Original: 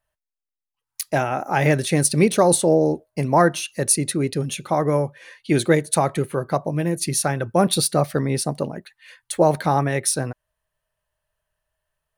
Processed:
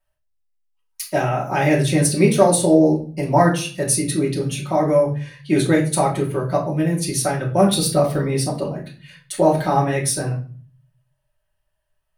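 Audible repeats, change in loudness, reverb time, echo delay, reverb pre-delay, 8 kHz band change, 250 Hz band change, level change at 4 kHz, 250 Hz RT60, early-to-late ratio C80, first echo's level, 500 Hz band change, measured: no echo, +2.0 dB, 0.40 s, no echo, 3 ms, -0.5 dB, +3.5 dB, +1.0 dB, 0.75 s, 14.5 dB, no echo, +2.0 dB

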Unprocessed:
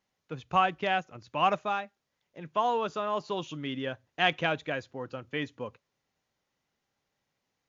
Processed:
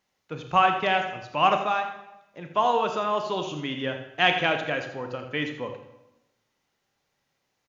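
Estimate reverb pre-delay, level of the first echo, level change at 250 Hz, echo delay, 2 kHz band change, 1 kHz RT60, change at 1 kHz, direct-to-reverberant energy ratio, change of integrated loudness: 27 ms, -11.5 dB, +4.0 dB, 83 ms, +6.0 dB, 0.90 s, +5.5 dB, 5.0 dB, +5.0 dB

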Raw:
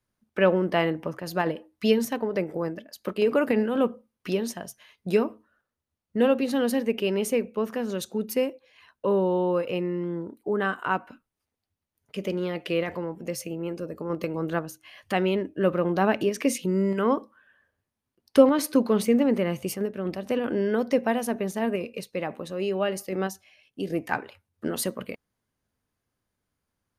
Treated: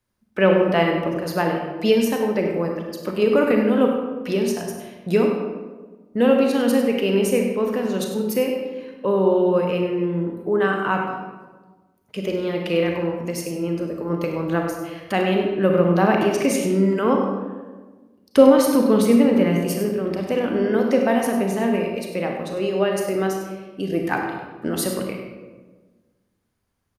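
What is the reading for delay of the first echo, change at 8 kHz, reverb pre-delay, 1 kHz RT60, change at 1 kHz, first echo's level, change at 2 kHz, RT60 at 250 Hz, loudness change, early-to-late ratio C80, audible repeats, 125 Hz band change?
99 ms, +4.5 dB, 29 ms, 1.2 s, +5.5 dB, -11.0 dB, +5.0 dB, 1.7 s, +6.0 dB, 4.5 dB, 1, +7.0 dB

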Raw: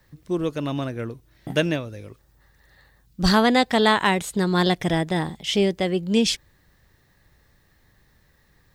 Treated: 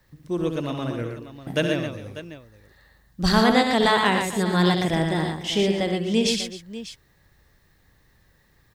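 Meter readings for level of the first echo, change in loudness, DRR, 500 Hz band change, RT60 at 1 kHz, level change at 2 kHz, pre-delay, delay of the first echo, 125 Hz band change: -8.0 dB, -0.5 dB, no reverb, -0.5 dB, no reverb, 0.0 dB, no reverb, 68 ms, +0.5 dB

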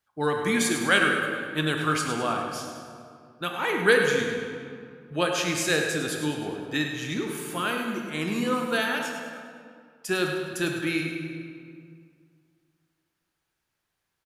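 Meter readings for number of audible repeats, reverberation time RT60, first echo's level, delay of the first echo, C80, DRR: 2, 2.3 s, -8.5 dB, 103 ms, 3.0 dB, 1.0 dB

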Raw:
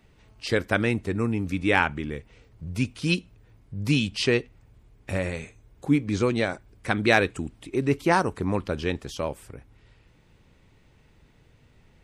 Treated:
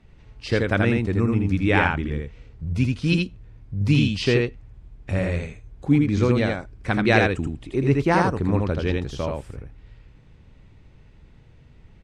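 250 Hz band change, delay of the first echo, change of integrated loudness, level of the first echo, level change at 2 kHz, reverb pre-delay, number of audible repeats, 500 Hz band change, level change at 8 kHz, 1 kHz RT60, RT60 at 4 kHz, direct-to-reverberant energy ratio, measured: +4.5 dB, 81 ms, +3.5 dB, -3.0 dB, +1.5 dB, no reverb, 1, +2.5 dB, -3.0 dB, no reverb, no reverb, no reverb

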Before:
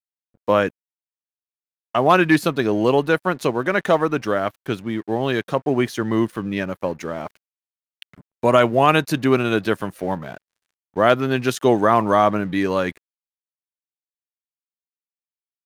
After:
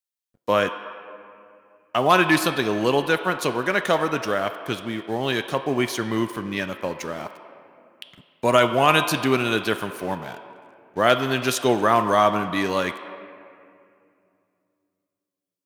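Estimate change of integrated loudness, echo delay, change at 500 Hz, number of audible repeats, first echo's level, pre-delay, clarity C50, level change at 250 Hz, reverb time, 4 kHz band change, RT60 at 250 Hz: -2.0 dB, no echo, -3.0 dB, no echo, no echo, 5 ms, 9.5 dB, -4.0 dB, 2.4 s, +3.5 dB, 3.1 s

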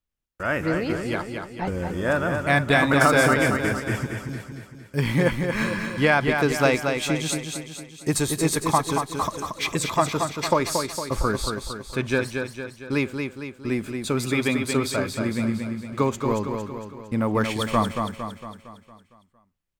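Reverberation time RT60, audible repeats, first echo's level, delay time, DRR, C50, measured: no reverb, 6, -5.5 dB, 229 ms, no reverb, no reverb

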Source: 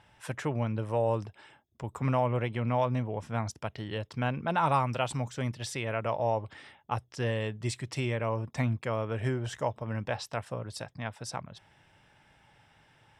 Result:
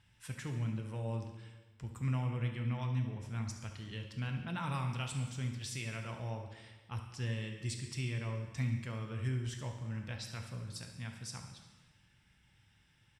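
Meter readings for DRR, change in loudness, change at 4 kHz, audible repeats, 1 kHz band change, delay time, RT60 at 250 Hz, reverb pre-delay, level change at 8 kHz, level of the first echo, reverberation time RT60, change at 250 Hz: 3.5 dB, -7.0 dB, -4.5 dB, 1, -15.5 dB, 70 ms, 1.2 s, 5 ms, -3.0 dB, -12.5 dB, 1.3 s, -7.0 dB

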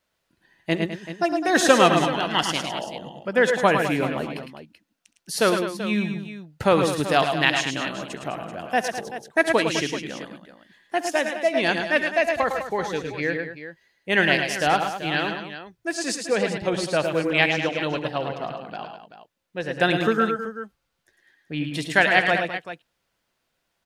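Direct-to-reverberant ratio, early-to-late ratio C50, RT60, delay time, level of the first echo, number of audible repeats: no reverb, no reverb, no reverb, 67 ms, -17.0 dB, 4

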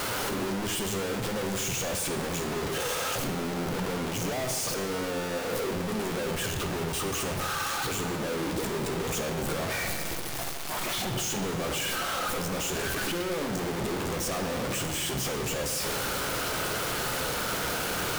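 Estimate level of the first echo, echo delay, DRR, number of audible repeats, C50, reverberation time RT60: no echo, no echo, 4.5 dB, no echo, 6.5 dB, 2.1 s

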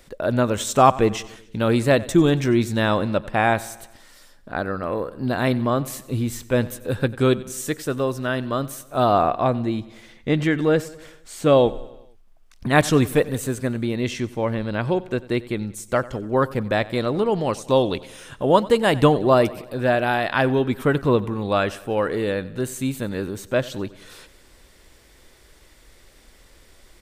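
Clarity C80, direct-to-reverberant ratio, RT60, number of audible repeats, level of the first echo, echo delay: no reverb, no reverb, no reverb, 4, -19.5 dB, 93 ms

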